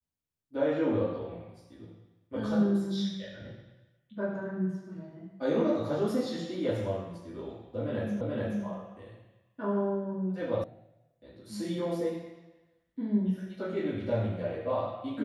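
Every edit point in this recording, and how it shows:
8.21 repeat of the last 0.43 s
10.64 sound cut off

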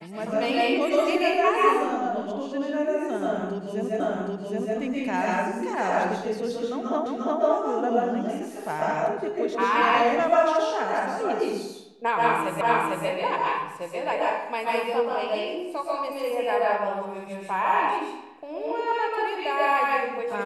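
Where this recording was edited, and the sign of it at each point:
4 repeat of the last 0.77 s
7.06 repeat of the last 0.35 s
12.61 repeat of the last 0.45 s

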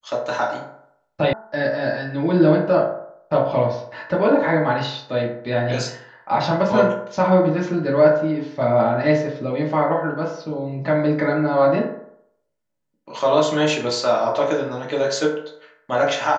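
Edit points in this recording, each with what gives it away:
1.33 sound cut off

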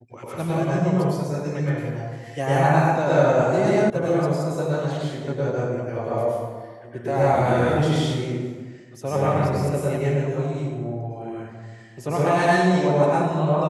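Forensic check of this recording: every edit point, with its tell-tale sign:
3.9 sound cut off

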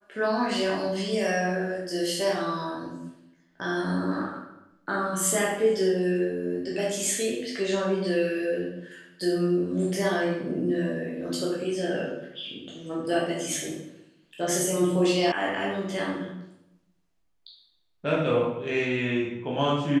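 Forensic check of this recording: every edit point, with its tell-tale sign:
15.32 sound cut off

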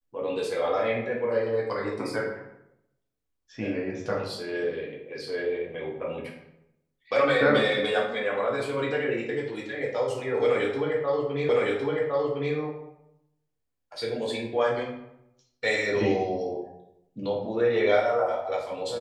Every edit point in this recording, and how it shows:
11.49 repeat of the last 1.06 s

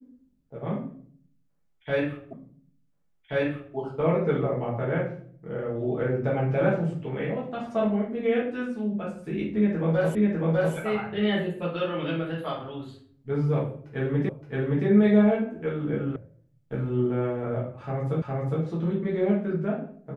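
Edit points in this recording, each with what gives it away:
2.33 repeat of the last 1.43 s
10.15 repeat of the last 0.6 s
14.29 repeat of the last 0.57 s
16.16 sound cut off
18.22 repeat of the last 0.41 s

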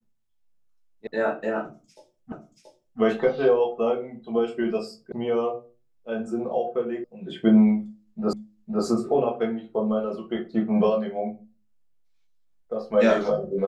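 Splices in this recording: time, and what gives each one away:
1.07 sound cut off
2.32 repeat of the last 0.68 s
5.12 sound cut off
7.04 sound cut off
8.33 repeat of the last 0.51 s

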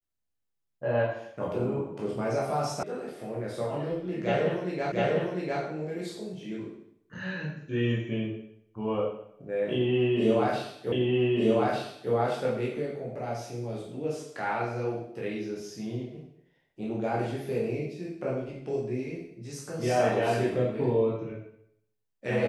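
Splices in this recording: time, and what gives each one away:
2.83 sound cut off
4.92 repeat of the last 0.7 s
10.92 repeat of the last 1.2 s

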